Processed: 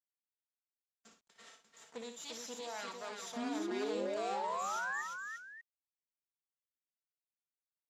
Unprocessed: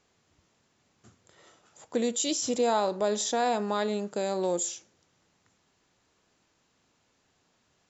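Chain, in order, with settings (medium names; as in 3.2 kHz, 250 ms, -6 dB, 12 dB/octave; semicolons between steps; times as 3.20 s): comb filter that takes the minimum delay 4.4 ms; gate -60 dBFS, range -23 dB; high-pass 110 Hz 24 dB/octave; tilt EQ +3 dB/octave; reverse; compression 6:1, threshold -42 dBFS, peak gain reduction 20.5 dB; reverse; painted sound rise, 3.36–5.02 s, 230–1900 Hz -39 dBFS; on a send: multi-tap echo 59/347/594 ms -8/-5/-12 dB; on the sum: word length cut 12-bit, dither none; distance through air 82 m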